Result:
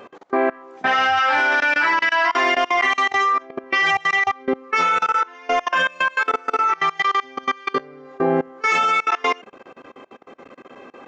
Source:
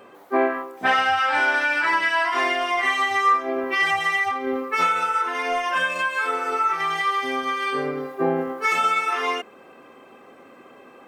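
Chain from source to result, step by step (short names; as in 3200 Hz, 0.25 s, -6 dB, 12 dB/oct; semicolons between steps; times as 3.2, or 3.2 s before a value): downsampling 16000 Hz; level quantiser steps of 24 dB; gain +6.5 dB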